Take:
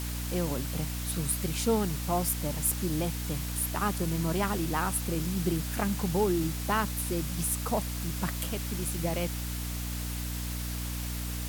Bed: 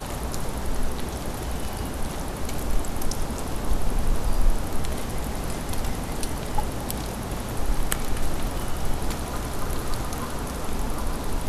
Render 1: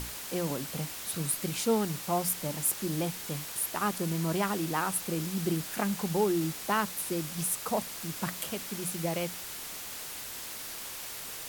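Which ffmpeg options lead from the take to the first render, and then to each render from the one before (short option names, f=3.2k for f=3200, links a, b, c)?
-af "bandreject=f=60:t=h:w=6,bandreject=f=120:t=h:w=6,bandreject=f=180:t=h:w=6,bandreject=f=240:t=h:w=6,bandreject=f=300:t=h:w=6"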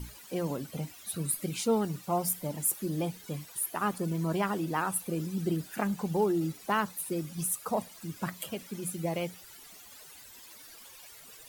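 -af "afftdn=nr=15:nf=-41"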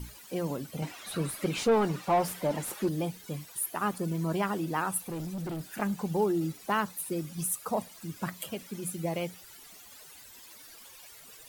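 -filter_complex "[0:a]asettb=1/sr,asplit=3[a][b][c];[a]atrim=end=0.824[d];[b]atrim=start=0.82:end=2.89,asetpts=PTS-STARTPTS,afade=t=in:d=0.004:c=qsin,afade=t=out:st=2.066:d=0.004:c=qsin,asplit=2[e][f];[f]highpass=f=720:p=1,volume=21dB,asoftclip=type=tanh:threshold=-15dB[g];[e][g]amix=inputs=2:normalize=0,lowpass=f=1.4k:p=1,volume=-6dB[h];[c]atrim=start=2.886[i];[d][h]acrossfade=d=0.004:c1=hsin:c2=qsin[j];[j][i]acrossfade=d=0.004:c1=qsin:c2=hsin,asplit=3[k][l][m];[k]afade=t=out:st=5:d=0.02[n];[l]asoftclip=type=hard:threshold=-33dB,afade=t=in:st=5:d=0.02,afade=t=out:st=5.79:d=0.02[o];[m]afade=t=in:st=5.79:d=0.02[p];[n][o][p]amix=inputs=3:normalize=0"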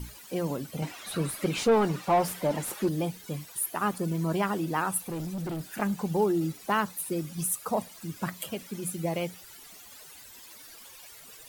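-af "volume=2dB"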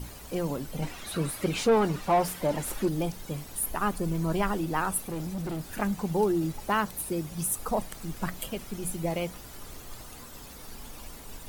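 -filter_complex "[1:a]volume=-18dB[a];[0:a][a]amix=inputs=2:normalize=0"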